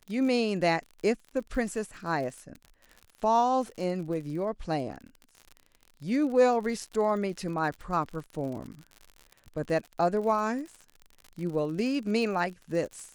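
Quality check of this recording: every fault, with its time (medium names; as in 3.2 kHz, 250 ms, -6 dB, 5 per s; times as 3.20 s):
crackle 61 per s -37 dBFS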